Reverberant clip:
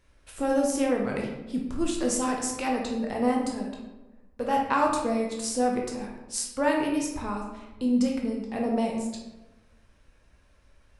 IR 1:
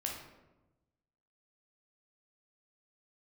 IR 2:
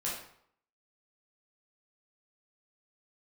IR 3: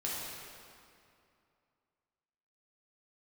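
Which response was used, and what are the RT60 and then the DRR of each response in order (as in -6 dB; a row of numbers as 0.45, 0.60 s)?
1; 1.1, 0.65, 2.5 s; -1.0, -6.5, -6.5 dB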